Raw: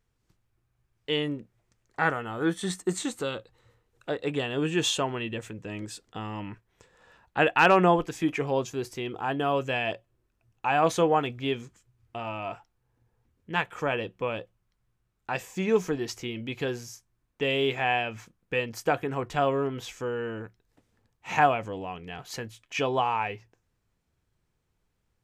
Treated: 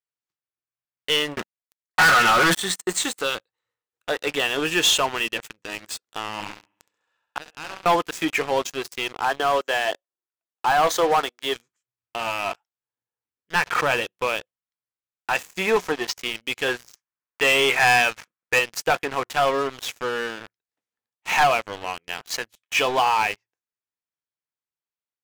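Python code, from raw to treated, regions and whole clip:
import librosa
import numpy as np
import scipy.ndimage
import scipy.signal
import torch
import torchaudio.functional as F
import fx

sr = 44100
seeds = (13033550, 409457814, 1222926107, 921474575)

y = fx.chain(x, sr, fx.leveller(passes=5),
    fx.peak_eq(hz=360.0, db=-6.5, octaves=1.9),
    fx.comb(ms=5.5, depth=0.43), at=(1.37, 2.55))
y = fx.chain(y, sr, fx.notch(hz=1900.0, q=14.0),
    fx.room_flutter(wall_m=11.5, rt60_s=0.93),
    fx.gate_flip(shuts_db=-20.0, range_db=-24), at=(6.33, 7.86))
y = fx.chain(y, sr, fx.highpass(hz=300.0, slope=24),
    fx.peak_eq(hz=2500.0, db=-12.5, octaves=0.36),
    fx.resample_linear(factor=2), at=(9.25, 11.56))
y = fx.chain(y, sr, fx.bass_treble(bass_db=8, treble_db=-12),
    fx.pre_swell(db_per_s=87.0), at=(13.55, 14.01))
y = fx.chain(y, sr, fx.lowpass(hz=6100.0, slope=12),
    fx.peak_eq(hz=870.0, db=6.5, octaves=0.87), at=(15.61, 16.16))
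y = fx.chain(y, sr, fx.lowpass(hz=3300.0, slope=6),
    fx.peak_eq(hz=1500.0, db=7.5, octaves=2.4), at=(16.68, 18.59))
y = fx.highpass(y, sr, hz=1400.0, slope=6)
y = fx.high_shelf(y, sr, hz=4800.0, db=-4.0)
y = fx.leveller(y, sr, passes=5)
y = F.gain(torch.from_numpy(y), -4.0).numpy()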